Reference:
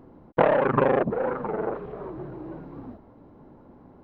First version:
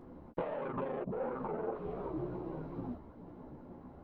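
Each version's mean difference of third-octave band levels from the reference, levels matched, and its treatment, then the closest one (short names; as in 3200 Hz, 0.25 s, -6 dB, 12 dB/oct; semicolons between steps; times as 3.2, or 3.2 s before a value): 6.0 dB: compressor 12:1, threshold -32 dBFS, peak gain reduction 18.5 dB; dynamic EQ 1700 Hz, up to -6 dB, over -60 dBFS, Q 2.5; chorus voices 4, 1.1 Hz, delay 14 ms, depth 3 ms; gain +1.5 dB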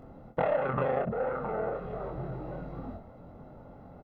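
4.0 dB: comb 1.5 ms, depth 57%; compressor 2:1, threshold -35 dBFS, peak gain reduction 12.5 dB; early reflections 23 ms -4 dB, 63 ms -13 dB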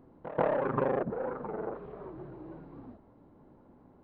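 1.0 dB: dynamic EQ 2800 Hz, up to -6 dB, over -43 dBFS, Q 0.94; on a send: reverse echo 0.137 s -14 dB; on the sum: downsampling 11025 Hz; gain -8 dB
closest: third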